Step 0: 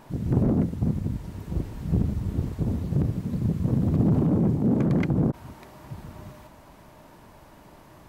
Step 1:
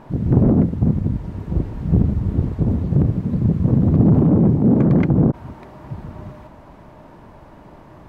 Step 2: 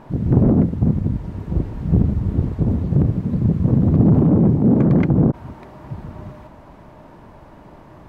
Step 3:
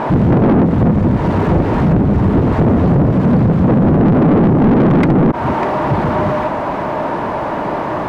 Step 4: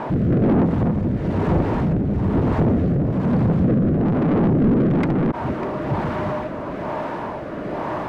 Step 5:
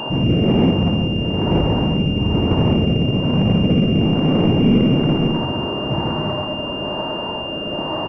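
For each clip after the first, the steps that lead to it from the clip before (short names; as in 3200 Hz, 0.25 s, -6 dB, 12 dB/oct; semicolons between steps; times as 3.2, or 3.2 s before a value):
LPF 1300 Hz 6 dB/oct; gain +8 dB
nothing audible
compressor 6:1, threshold -20 dBFS, peak gain reduction 11 dB; overdrive pedal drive 31 dB, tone 1200 Hz, clips at -10.5 dBFS; gain +7.5 dB
rotary speaker horn 1.1 Hz; gain -5.5 dB
loudspeakers at several distances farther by 20 m -3 dB, 47 m -3 dB; pulse-width modulation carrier 2800 Hz; gain -1 dB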